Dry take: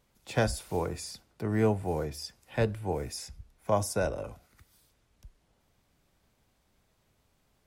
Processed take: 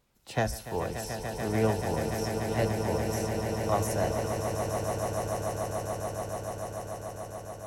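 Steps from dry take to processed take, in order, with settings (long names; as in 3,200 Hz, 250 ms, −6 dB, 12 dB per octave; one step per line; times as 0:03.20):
formants moved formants +2 semitones
echo that builds up and dies away 145 ms, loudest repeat 8, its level −9 dB
level −1.5 dB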